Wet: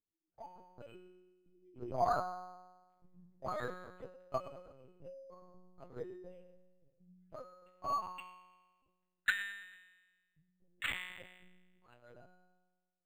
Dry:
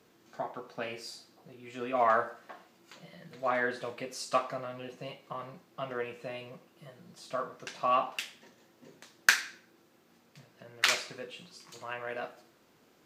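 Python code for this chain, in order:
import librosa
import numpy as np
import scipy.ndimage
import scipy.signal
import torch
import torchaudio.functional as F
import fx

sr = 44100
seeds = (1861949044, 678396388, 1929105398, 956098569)

p1 = fx.bin_expand(x, sr, power=2.0)
p2 = np.sign(p1) * np.maximum(np.abs(p1) - 10.0 ** (-47.0 / 20.0), 0.0)
p3 = p1 + (p2 * 10.0 ** (-5.0 / 20.0))
p4 = fx.comb_fb(p3, sr, f0_hz=180.0, decay_s=1.3, harmonics='all', damping=0.0, mix_pct=90)
p5 = p4 + fx.echo_feedback(p4, sr, ms=111, feedback_pct=42, wet_db=-17, dry=0)
p6 = fx.lpc_vocoder(p5, sr, seeds[0], excitation='pitch_kept', order=10)
p7 = np.interp(np.arange(len(p6)), np.arange(len(p6))[::8], p6[::8])
y = p7 * 10.0 ** (10.5 / 20.0)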